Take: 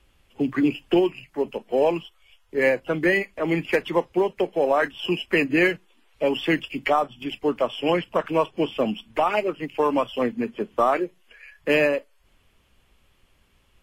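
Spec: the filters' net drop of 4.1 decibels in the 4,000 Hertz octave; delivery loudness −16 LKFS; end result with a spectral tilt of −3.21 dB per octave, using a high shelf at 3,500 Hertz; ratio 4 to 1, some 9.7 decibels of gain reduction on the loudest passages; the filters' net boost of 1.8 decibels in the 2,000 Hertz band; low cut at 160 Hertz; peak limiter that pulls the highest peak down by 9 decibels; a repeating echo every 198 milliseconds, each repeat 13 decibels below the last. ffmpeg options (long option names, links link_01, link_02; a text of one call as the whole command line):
ffmpeg -i in.wav -af "highpass=160,equalizer=frequency=2000:width_type=o:gain=5.5,highshelf=frequency=3500:gain=-7.5,equalizer=frequency=4000:width_type=o:gain=-5.5,acompressor=threshold=-27dB:ratio=4,alimiter=limit=-23dB:level=0:latency=1,aecho=1:1:198|396|594:0.224|0.0493|0.0108,volume=18dB" out.wav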